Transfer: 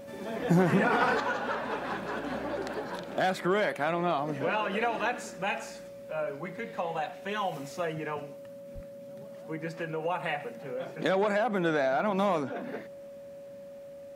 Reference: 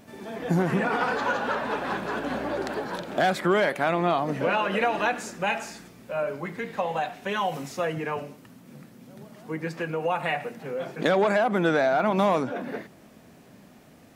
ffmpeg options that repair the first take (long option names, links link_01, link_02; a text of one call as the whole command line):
ffmpeg -i in.wav -filter_complex "[0:a]bandreject=frequency=560:width=30,asplit=3[link_01][link_02][link_03];[link_01]afade=type=out:start_time=8.74:duration=0.02[link_04];[link_02]highpass=frequency=140:width=0.5412,highpass=frequency=140:width=1.3066,afade=type=in:start_time=8.74:duration=0.02,afade=type=out:start_time=8.86:duration=0.02[link_05];[link_03]afade=type=in:start_time=8.86:duration=0.02[link_06];[link_04][link_05][link_06]amix=inputs=3:normalize=0,asetnsamples=nb_out_samples=441:pad=0,asendcmd='1.2 volume volume 5dB',volume=0dB" out.wav